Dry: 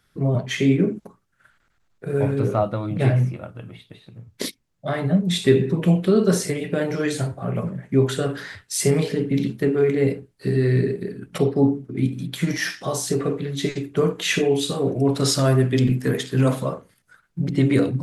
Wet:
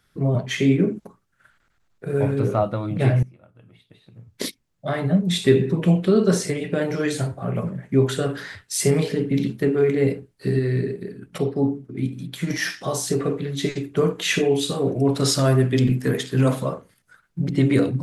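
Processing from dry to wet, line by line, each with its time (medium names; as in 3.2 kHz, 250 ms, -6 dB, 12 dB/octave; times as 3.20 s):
3.23–4.44 s: fade in quadratic, from -19 dB
5.83–6.82 s: low-pass 10 kHz
10.59–12.50 s: gain -3.5 dB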